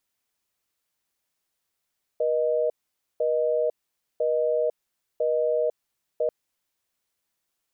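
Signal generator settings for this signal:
call progress tone busy tone, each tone −23.5 dBFS 4.09 s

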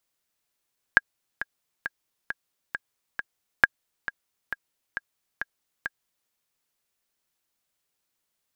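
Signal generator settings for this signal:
click track 135 BPM, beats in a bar 6, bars 2, 1,630 Hz, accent 14.5 dB −1.5 dBFS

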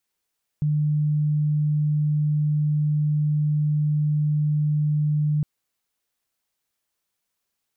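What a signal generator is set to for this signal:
tone sine 150 Hz −18.5 dBFS 4.81 s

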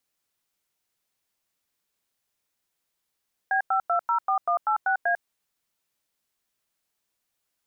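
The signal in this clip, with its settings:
touch tones "B5204186A", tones 97 ms, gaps 96 ms, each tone −23 dBFS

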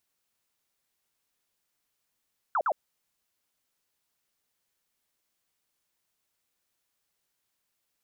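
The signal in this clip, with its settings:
repeated falling chirps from 1,500 Hz, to 540 Hz, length 0.06 s sine, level −23 dB, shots 2, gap 0.05 s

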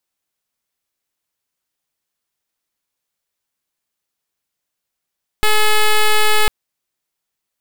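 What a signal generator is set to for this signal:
pulse wave 427 Hz, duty 7% −11 dBFS 1.05 s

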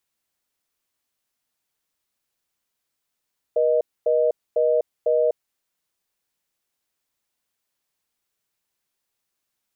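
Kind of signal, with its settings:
call progress tone reorder tone, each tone −19 dBFS 1.88 s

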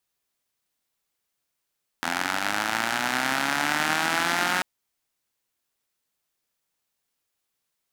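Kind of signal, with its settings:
pulse-train model of a four-cylinder engine, changing speed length 2.59 s, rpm 2,500, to 5,500, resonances 280/820/1,400 Hz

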